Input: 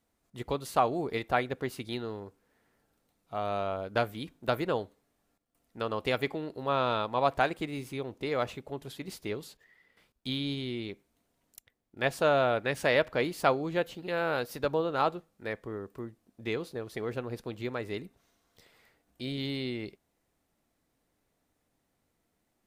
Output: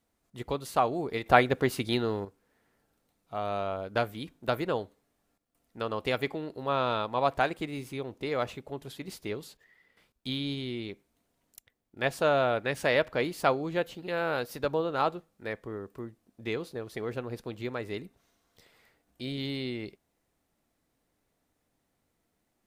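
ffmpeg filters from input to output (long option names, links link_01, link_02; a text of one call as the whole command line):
ffmpeg -i in.wav -filter_complex "[0:a]asplit=3[link_01][link_02][link_03];[link_01]atrim=end=1.262[link_04];[link_02]atrim=start=1.258:end=2.252,asetpts=PTS-STARTPTS,volume=7.5dB[link_05];[link_03]atrim=start=2.248[link_06];[link_04][link_05]acrossfade=duration=0.004:curve1=hsin:curve2=hsin[link_07];[link_07][link_06]acrossfade=duration=0.004:curve1=hsin:curve2=hsin" out.wav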